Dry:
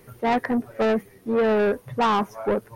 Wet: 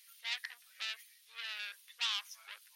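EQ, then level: ladder high-pass 2.9 kHz, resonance 30%; treble shelf 3.7 kHz -7.5 dB; +11.0 dB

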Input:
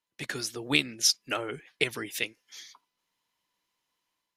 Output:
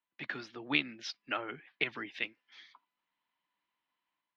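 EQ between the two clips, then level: distance through air 250 m; three-band isolator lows -15 dB, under 200 Hz, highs -22 dB, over 4.7 kHz; peaking EQ 450 Hz -10 dB 0.86 oct; 0.0 dB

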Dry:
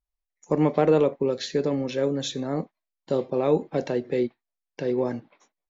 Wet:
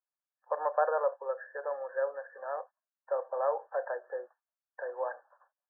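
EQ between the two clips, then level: Chebyshev high-pass 530 Hz, order 5; brick-wall FIR low-pass 1.8 kHz; tilt shelf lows -6 dB, about 750 Hz; -1.5 dB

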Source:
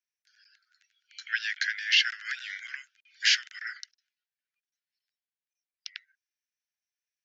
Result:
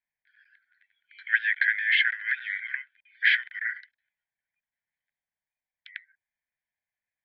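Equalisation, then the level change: static phaser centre 1.9 kHz, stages 8; dynamic bell 1.1 kHz, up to +3 dB, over -47 dBFS, Q 2.4; Chebyshev low-pass 3.1 kHz, order 5; +8.0 dB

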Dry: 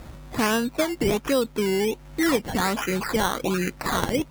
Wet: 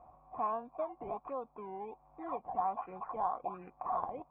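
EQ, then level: cascade formant filter a; +1.0 dB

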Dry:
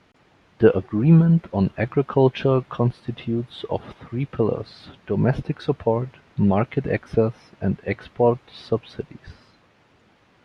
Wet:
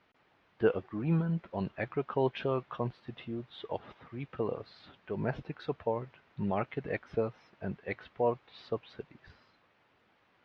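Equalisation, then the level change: distance through air 160 m; bass shelf 420 Hz -10.5 dB; -6.5 dB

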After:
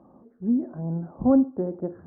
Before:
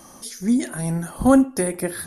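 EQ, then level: Gaussian low-pass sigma 9.8 samples; high-pass 140 Hz 6 dB/octave; distance through air 340 m; -1.5 dB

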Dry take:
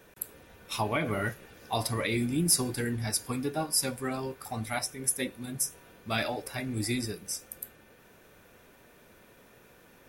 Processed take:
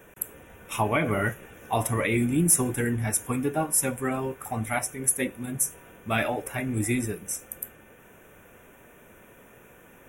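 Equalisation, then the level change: Butterworth band-stop 4.5 kHz, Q 1.4; +5.0 dB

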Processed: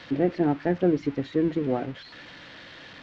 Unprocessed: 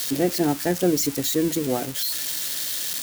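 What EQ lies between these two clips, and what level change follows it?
distance through air 160 m; tape spacing loss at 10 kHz 37 dB; peaking EQ 2.1 kHz +4.5 dB 1.8 oct; 0.0 dB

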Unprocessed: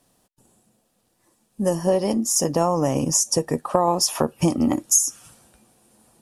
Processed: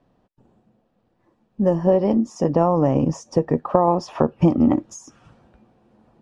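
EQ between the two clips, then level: tape spacing loss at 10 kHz 41 dB; +5.0 dB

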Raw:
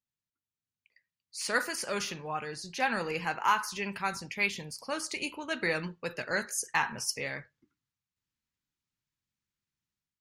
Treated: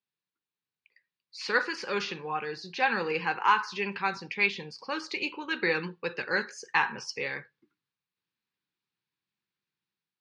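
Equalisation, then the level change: Butterworth band-stop 650 Hz, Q 4; cabinet simulation 240–4100 Hz, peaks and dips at 260 Hz -8 dB, 550 Hz -4 dB, 880 Hz -4 dB, 1.3 kHz -5 dB, 2 kHz -5 dB, 3.1 kHz -5 dB; +7.0 dB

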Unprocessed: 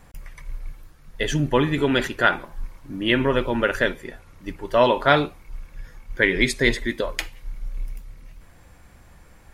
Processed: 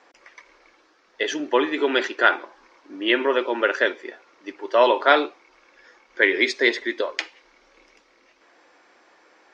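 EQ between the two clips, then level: elliptic band-pass 330–5700 Hz, stop band 40 dB; +1.5 dB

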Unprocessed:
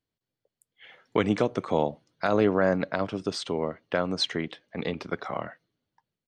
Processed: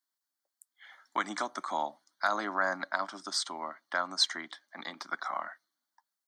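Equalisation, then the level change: high-pass 270 Hz 24 dB/octave; tilt shelf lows -7.5 dB, about 870 Hz; static phaser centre 1.1 kHz, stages 4; 0.0 dB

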